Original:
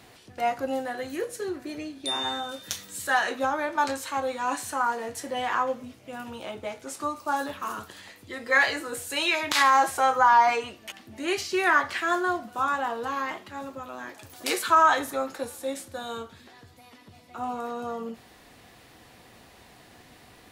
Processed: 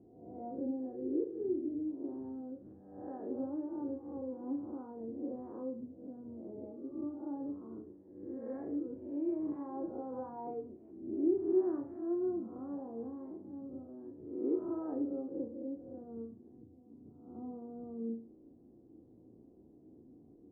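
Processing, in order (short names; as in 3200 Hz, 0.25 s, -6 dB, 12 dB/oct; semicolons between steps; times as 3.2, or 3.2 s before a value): spectral swells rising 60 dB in 0.83 s; ladder low-pass 370 Hz, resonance 55%; low shelf 150 Hz -8.5 dB; flutter echo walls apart 6 m, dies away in 0.33 s; gain +2.5 dB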